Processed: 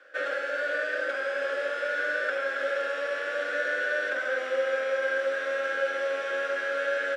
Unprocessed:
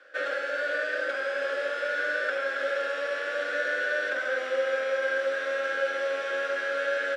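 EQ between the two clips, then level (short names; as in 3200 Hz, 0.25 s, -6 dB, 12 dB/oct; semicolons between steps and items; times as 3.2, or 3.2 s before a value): bell 4300 Hz -3 dB 0.71 oct; 0.0 dB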